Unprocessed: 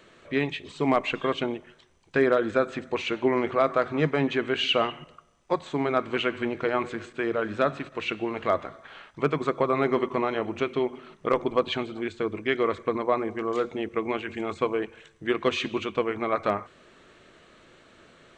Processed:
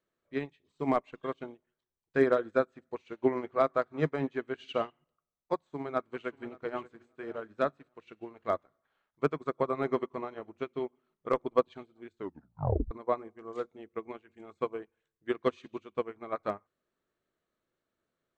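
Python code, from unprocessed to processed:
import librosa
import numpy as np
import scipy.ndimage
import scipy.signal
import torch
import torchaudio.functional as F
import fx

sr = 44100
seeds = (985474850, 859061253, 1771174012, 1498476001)

y = fx.echo_throw(x, sr, start_s=5.64, length_s=1.14, ms=580, feedback_pct=30, wet_db=-11.5)
y = fx.edit(y, sr, fx.tape_stop(start_s=12.16, length_s=0.75), tone=tone)
y = fx.peak_eq(y, sr, hz=2700.0, db=-6.0, octaves=1.1)
y = fx.upward_expand(y, sr, threshold_db=-38.0, expansion=2.5)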